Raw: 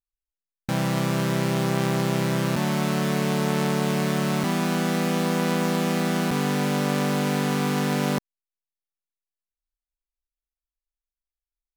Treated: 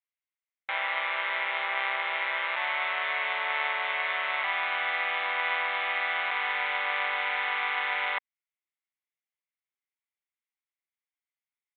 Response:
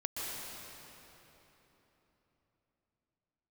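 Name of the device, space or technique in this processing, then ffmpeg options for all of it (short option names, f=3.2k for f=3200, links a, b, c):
musical greeting card: -af "aresample=8000,aresample=44100,highpass=f=770:w=0.5412,highpass=f=770:w=1.3066,equalizer=f=2.1k:t=o:w=0.3:g=12"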